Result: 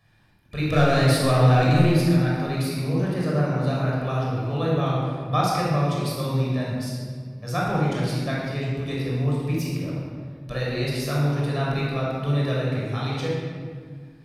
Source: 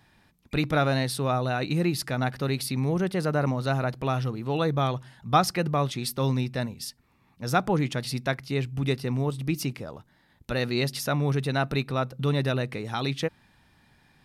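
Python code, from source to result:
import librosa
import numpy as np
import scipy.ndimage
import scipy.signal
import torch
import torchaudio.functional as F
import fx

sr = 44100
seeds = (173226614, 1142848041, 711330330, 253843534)

y = fx.leveller(x, sr, passes=2, at=(0.68, 1.92))
y = fx.room_shoebox(y, sr, seeds[0], volume_m3=2600.0, walls='mixed', distance_m=5.9)
y = y * 10.0 ** (-8.5 / 20.0)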